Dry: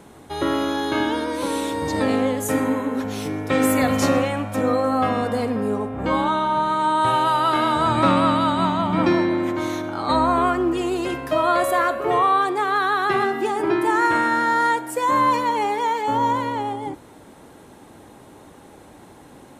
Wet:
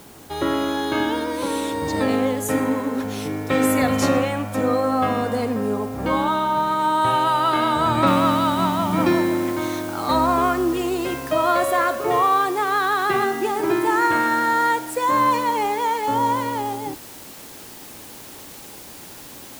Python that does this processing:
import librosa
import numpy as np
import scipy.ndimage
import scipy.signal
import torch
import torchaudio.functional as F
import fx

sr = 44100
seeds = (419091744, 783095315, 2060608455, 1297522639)

y = fx.noise_floor_step(x, sr, seeds[0], at_s=8.07, before_db=-49, after_db=-41, tilt_db=0.0)